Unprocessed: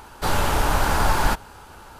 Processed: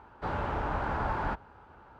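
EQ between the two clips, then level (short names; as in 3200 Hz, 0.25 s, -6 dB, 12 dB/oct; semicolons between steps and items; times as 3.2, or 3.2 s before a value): HPF 48 Hz; LPF 1700 Hz 12 dB/oct; -9.0 dB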